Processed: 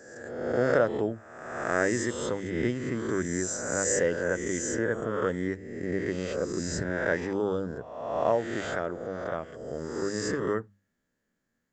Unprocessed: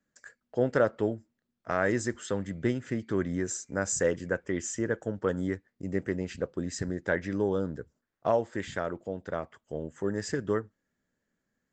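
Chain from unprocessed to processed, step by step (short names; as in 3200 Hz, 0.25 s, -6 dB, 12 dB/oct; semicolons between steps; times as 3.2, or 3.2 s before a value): spectral swells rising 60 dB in 1.22 s; notches 50/100/150/200 Hz; gain -1.5 dB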